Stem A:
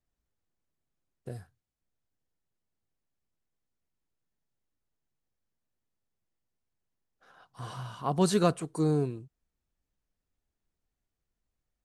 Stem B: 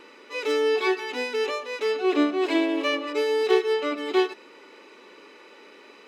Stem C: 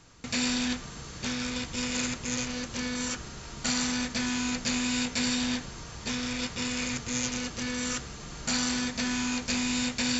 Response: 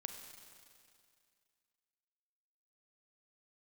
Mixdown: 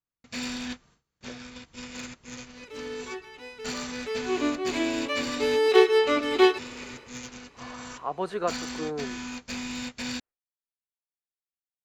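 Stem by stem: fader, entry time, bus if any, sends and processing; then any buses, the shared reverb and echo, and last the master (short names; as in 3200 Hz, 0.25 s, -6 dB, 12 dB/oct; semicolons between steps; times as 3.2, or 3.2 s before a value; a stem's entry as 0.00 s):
+1.0 dB, 0.00 s, no send, three-band isolator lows -17 dB, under 360 Hz, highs -23 dB, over 2700 Hz
3.58 s -18.5 dB -> 4.26 s -9 dB -> 5.21 s -9 dB -> 5.74 s -0.5 dB, 2.25 s, no send, AGC gain up to 5 dB; auto duck -13 dB, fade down 0.30 s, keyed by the first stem
-1.5 dB, 0.00 s, no send, high shelf 5400 Hz -8.5 dB; hard clip -23 dBFS, distortion -27 dB; upward expander 2.5:1, over -40 dBFS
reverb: off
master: gate with hold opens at -50 dBFS; low shelf 430 Hz -2.5 dB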